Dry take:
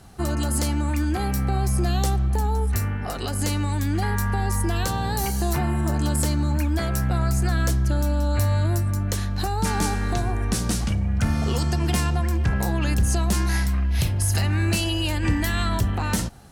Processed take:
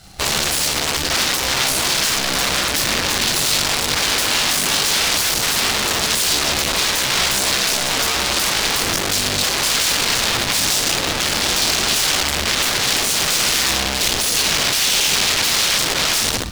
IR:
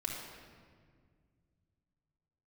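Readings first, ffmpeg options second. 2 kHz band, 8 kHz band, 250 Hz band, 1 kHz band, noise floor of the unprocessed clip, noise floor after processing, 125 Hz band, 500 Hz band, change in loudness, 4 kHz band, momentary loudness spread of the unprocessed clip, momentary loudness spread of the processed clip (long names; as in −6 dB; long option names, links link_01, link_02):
+13.0 dB, +15.0 dB, −3.5 dB, +6.0 dB, −26 dBFS, −21 dBFS, −11.0 dB, +5.0 dB, +8.0 dB, +18.5 dB, 3 LU, 2 LU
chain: -filter_complex "[1:a]atrim=start_sample=2205,asetrate=83790,aresample=44100[link_01];[0:a][link_01]afir=irnorm=-1:irlink=0,aeval=exprs='(mod(17.8*val(0)+1,2)-1)/17.8':channel_layout=same,acrusher=bits=2:mode=log:mix=0:aa=0.000001,equalizer=frequency=4500:width_type=o:width=2.4:gain=11.5,volume=4.5dB"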